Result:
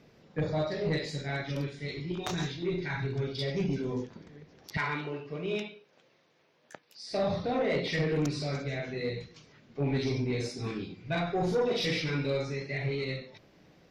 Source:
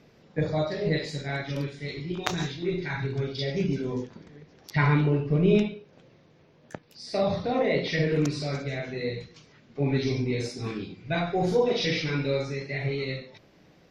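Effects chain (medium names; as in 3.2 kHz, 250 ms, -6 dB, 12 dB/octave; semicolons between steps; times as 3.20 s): 4.77–7.11 s: high-pass 940 Hz 6 dB/octave; saturation -19.5 dBFS, distortion -17 dB; trim -2 dB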